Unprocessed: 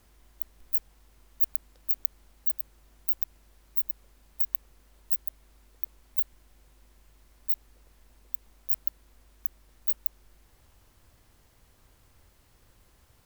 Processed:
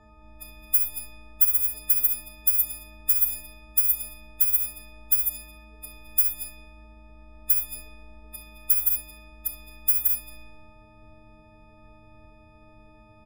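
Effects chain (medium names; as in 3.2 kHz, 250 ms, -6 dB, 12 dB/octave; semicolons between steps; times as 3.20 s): partials quantised in pitch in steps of 6 st; on a send: delay 219 ms -6.5 dB; on the sum: Schroeder reverb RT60 0.54 s, combs from 29 ms, DRR 3 dB; level-controlled noise filter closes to 1.2 kHz, open at -10 dBFS; trim +8 dB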